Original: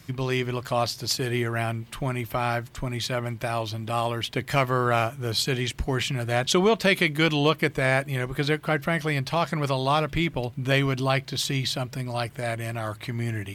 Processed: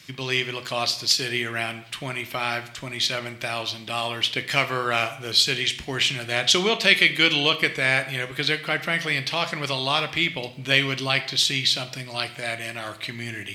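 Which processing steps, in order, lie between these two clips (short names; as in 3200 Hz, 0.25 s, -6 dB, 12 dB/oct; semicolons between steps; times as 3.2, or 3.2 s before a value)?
weighting filter D; on a send: reverb, pre-delay 14 ms, DRR 9.5 dB; on the sum: gain -3 dB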